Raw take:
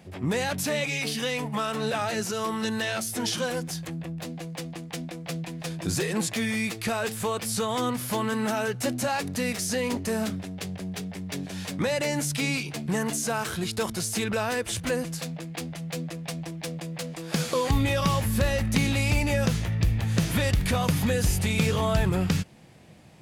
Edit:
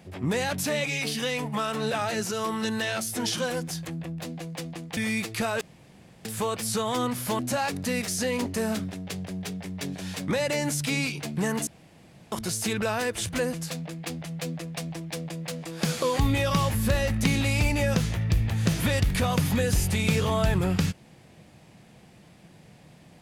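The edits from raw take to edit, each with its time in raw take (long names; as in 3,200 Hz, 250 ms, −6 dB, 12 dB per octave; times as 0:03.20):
0:04.97–0:06.44: remove
0:07.08: splice in room tone 0.64 s
0:08.22–0:08.90: remove
0:13.18–0:13.83: fill with room tone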